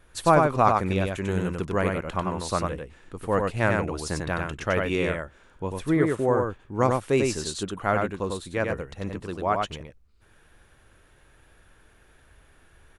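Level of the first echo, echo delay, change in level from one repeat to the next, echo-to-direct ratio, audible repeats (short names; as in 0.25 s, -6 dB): -3.5 dB, 95 ms, no steady repeat, -3.5 dB, 1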